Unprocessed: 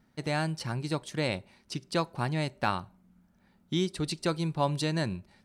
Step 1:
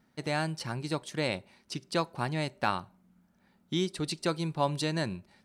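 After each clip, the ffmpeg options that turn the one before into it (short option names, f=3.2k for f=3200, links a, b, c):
-af "lowshelf=f=97:g=-9.5"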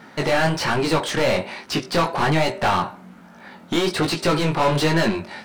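-filter_complex "[0:a]asplit=2[a][b];[b]highpass=f=720:p=1,volume=35dB,asoftclip=type=tanh:threshold=-13dB[c];[a][c]amix=inputs=2:normalize=0,lowpass=f=2k:p=1,volume=-6dB,flanger=delay=17.5:depth=6.4:speed=1.2,volume=5.5dB"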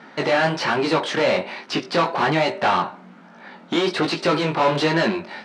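-af "highpass=200,lowpass=4.9k,volume=1dB"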